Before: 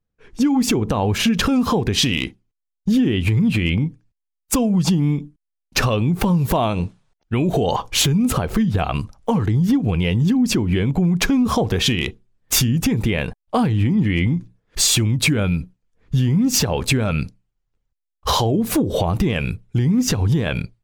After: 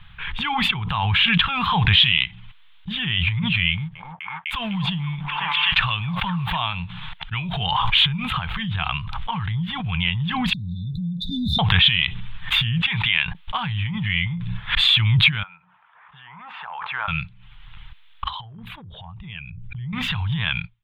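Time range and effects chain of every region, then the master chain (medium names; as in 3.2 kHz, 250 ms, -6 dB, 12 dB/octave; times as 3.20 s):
3.70–6.73 s: companding laws mixed up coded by A + repeats whose band climbs or falls 252 ms, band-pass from 720 Hz, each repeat 0.7 oct, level -10 dB
10.53–11.59 s: brick-wall FIR band-stop 300–3500 Hz + bass shelf 73 Hz -9 dB
12.78–13.26 s: low-pass 4.4 kHz + tilt EQ +3 dB/octave
15.43–17.08 s: Butterworth band-pass 910 Hz, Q 1.1 + compression 3:1, threshold -32 dBFS
18.28–19.93 s: resonances exaggerated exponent 1.5 + compression 16:1, threshold -27 dBFS
whole clip: FFT filter 170 Hz 0 dB, 270 Hz -27 dB, 540 Hz -21 dB, 890 Hz +5 dB, 1.8 kHz +8 dB, 3.5 kHz +14 dB, 5.5 kHz -29 dB, 11 kHz -22 dB; swell ahead of each attack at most 24 dB/s; trim -7 dB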